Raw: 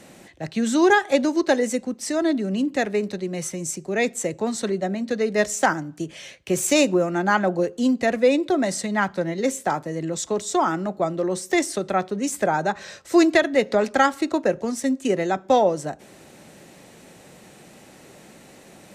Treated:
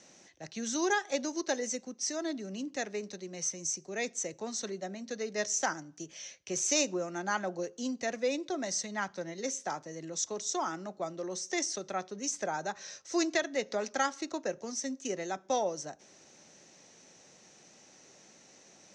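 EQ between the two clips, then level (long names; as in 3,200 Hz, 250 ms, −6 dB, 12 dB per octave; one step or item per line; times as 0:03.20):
transistor ladder low-pass 6,400 Hz, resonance 75%
low-shelf EQ 64 Hz −8 dB
low-shelf EQ 300 Hz −5 dB
0.0 dB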